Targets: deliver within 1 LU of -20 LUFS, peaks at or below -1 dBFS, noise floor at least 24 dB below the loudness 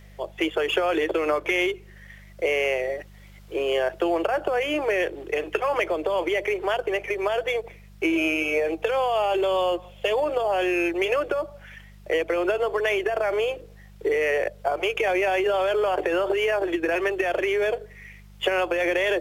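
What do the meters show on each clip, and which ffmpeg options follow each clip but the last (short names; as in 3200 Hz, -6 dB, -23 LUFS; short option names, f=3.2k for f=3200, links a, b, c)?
hum 50 Hz; harmonics up to 200 Hz; hum level -45 dBFS; loudness -24.5 LUFS; peak -9.0 dBFS; loudness target -20.0 LUFS
-> -af "bandreject=f=50:t=h:w=4,bandreject=f=100:t=h:w=4,bandreject=f=150:t=h:w=4,bandreject=f=200:t=h:w=4"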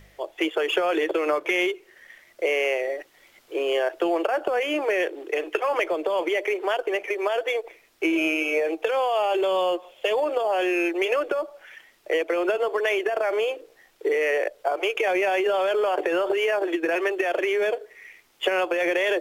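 hum none; loudness -24.5 LUFS; peak -9.0 dBFS; loudness target -20.0 LUFS
-> -af "volume=4.5dB"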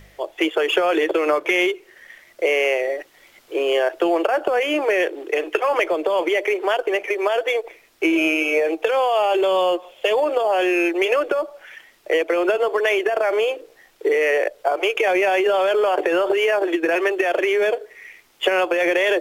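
loudness -20.0 LUFS; peak -4.5 dBFS; noise floor -53 dBFS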